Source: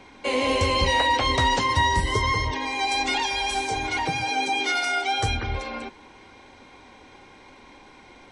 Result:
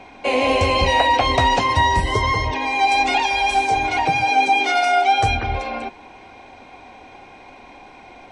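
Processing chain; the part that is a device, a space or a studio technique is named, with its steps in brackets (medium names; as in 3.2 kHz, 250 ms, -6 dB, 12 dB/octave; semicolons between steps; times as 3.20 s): inside a helmet (treble shelf 4.5 kHz -5.5 dB; small resonant body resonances 710/2500 Hz, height 12 dB, ringing for 25 ms); trim +3.5 dB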